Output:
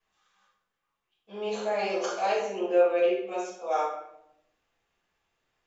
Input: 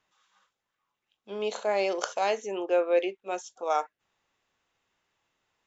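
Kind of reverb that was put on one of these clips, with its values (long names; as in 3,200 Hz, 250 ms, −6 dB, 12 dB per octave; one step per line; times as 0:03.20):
rectangular room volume 200 cubic metres, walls mixed, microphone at 5.9 metres
level −15.5 dB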